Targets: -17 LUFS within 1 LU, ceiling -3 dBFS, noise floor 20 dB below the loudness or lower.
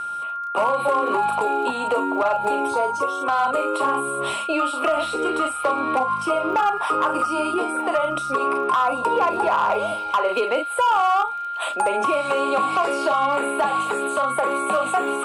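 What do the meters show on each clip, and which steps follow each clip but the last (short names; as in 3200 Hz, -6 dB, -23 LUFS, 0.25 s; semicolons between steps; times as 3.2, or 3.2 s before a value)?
ticks 27/s; steady tone 1400 Hz; tone level -26 dBFS; loudness -21.5 LUFS; peak -11.0 dBFS; loudness target -17.0 LUFS
-> de-click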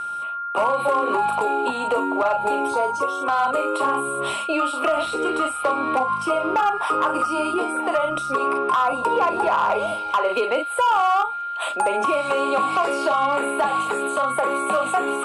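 ticks 0.066/s; steady tone 1400 Hz; tone level -26 dBFS
-> notch 1400 Hz, Q 30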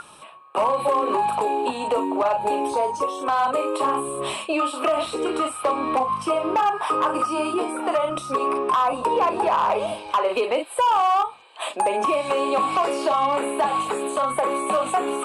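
steady tone none; loudness -22.5 LUFS; peak -11.5 dBFS; loudness target -17.0 LUFS
-> gain +5.5 dB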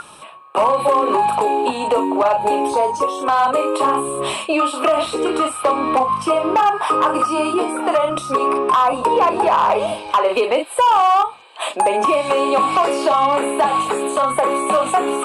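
loudness -17.0 LUFS; peak -6.0 dBFS; noise floor -38 dBFS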